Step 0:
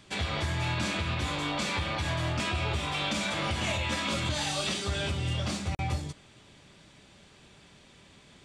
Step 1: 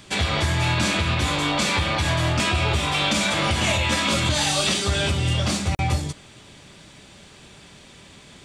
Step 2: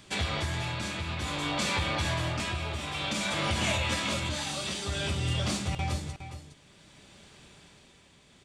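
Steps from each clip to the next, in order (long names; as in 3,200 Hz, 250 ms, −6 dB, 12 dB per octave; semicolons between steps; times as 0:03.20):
high-shelf EQ 7,500 Hz +6 dB; level +8.5 dB
amplitude tremolo 0.55 Hz, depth 52%; single-tap delay 412 ms −10.5 dB; level −7 dB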